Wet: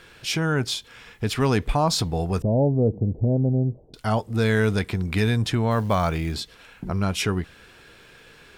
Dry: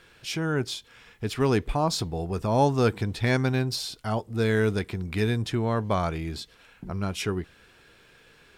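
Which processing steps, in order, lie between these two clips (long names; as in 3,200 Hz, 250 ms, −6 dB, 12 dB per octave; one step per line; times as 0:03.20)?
0:02.42–0:03.94: Butterworth low-pass 620 Hz 36 dB per octave
dynamic equaliser 360 Hz, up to −6 dB, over −39 dBFS, Q 2.7
in parallel at +0.5 dB: brickwall limiter −21 dBFS, peak gain reduction 8 dB
0:05.71–0:06.34: on the sum: floating-point word with a short mantissa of 4 bits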